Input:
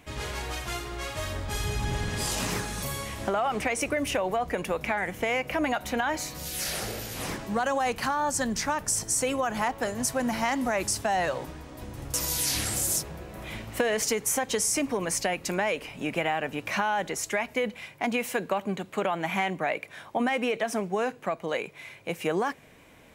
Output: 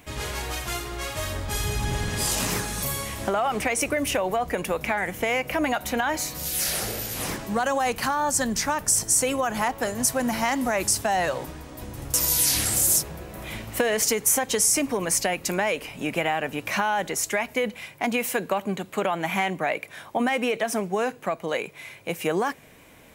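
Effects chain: high shelf 9600 Hz +9.5 dB; gain +2.5 dB

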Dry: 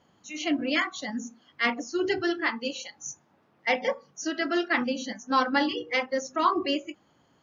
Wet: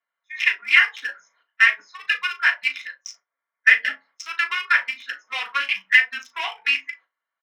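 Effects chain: Wiener smoothing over 15 samples; gate -53 dBFS, range -18 dB; harmonic-percussive split percussive +4 dB; compressor, threshold -24 dBFS, peak gain reduction 10 dB; soft clip -20 dBFS, distortion -18 dB; frequency shift -290 Hz; resonant high-pass 2300 Hz, resonance Q 3.3; doubler 37 ms -12.5 dB; reverb RT60 0.20 s, pre-delay 3 ms, DRR 1.5 dB; gain +5 dB

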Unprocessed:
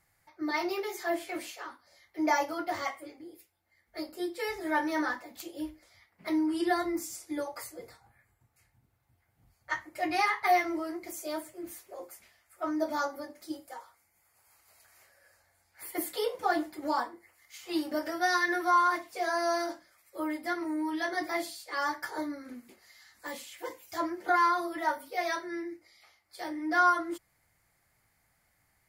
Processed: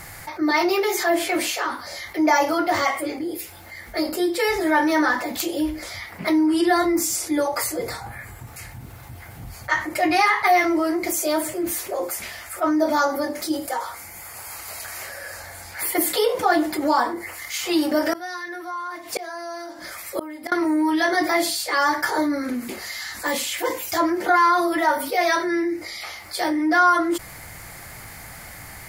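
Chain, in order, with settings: 18.13–20.52 flipped gate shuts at -28 dBFS, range -29 dB; fast leveller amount 50%; gain +6.5 dB

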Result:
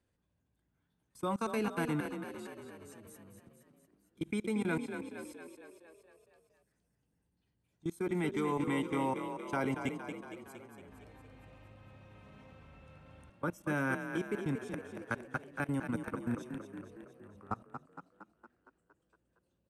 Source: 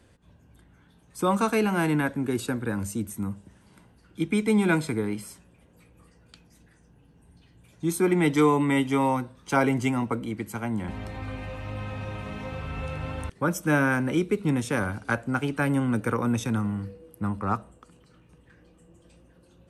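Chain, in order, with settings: level quantiser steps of 24 dB; frequency-shifting echo 0.231 s, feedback 60%, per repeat +32 Hz, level -8 dB; gain -8.5 dB

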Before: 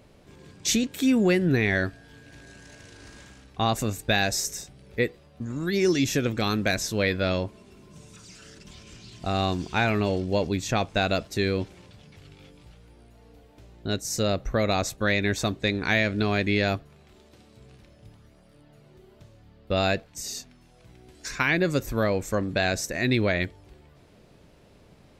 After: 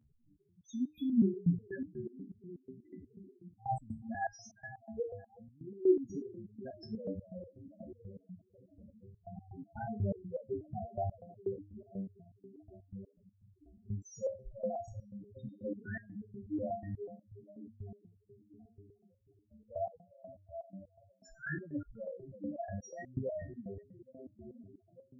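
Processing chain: diffused feedback echo 0.454 s, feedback 69%, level -9.5 dB; loudest bins only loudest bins 2; stepped resonator 8.2 Hz 74–540 Hz; gain +4 dB

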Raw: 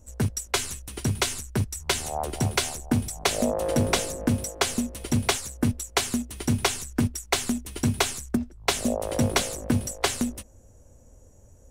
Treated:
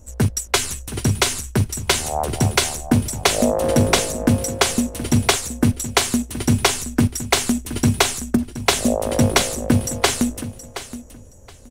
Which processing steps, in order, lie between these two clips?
feedback echo 0.722 s, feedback 19%, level -13.5 dB; gain +7 dB

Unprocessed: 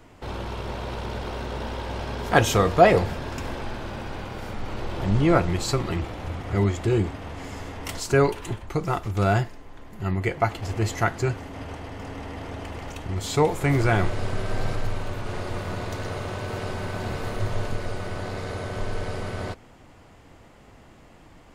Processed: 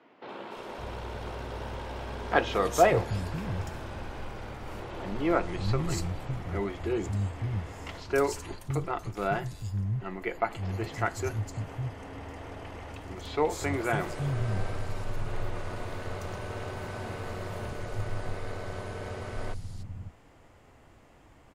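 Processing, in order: three bands offset in time mids, highs, lows 0.29/0.56 s, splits 200/4200 Hz; gain -5.5 dB

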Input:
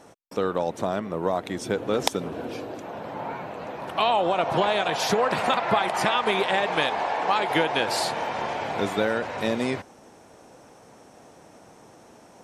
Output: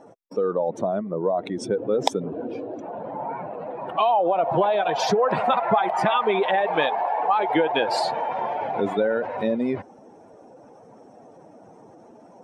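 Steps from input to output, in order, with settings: spectral contrast raised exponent 1.8; bell 65 Hz -6.5 dB 1.2 oct; gain +2.5 dB

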